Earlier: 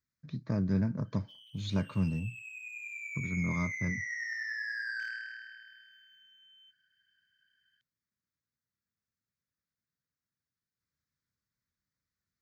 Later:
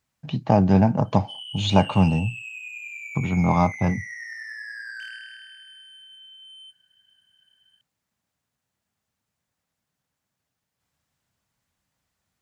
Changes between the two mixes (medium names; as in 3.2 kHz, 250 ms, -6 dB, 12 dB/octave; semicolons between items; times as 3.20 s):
speech +11.0 dB; master: remove static phaser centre 2.9 kHz, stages 6